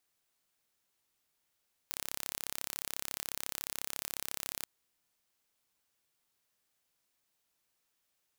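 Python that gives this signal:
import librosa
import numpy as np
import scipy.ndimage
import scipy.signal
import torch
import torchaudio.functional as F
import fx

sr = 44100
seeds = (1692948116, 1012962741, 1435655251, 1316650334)

y = 10.0 ** (-10.0 / 20.0) * (np.mod(np.arange(round(2.73 * sr)), round(sr / 34.1)) == 0)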